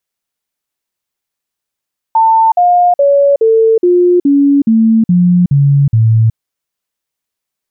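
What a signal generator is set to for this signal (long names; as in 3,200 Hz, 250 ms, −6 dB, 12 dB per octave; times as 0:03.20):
stepped sweep 895 Hz down, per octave 3, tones 10, 0.37 s, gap 0.05 s −5 dBFS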